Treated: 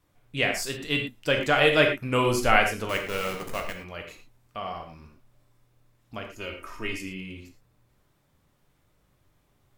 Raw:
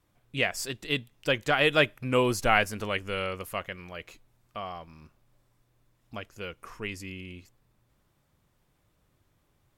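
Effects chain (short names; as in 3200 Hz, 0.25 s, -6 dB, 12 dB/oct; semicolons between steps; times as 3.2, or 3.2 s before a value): 2.89–3.74 level-crossing sampler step -33 dBFS; 6.35–6.98 comb 3.2 ms; reverb, pre-delay 7 ms, DRR 2.5 dB; gain +1 dB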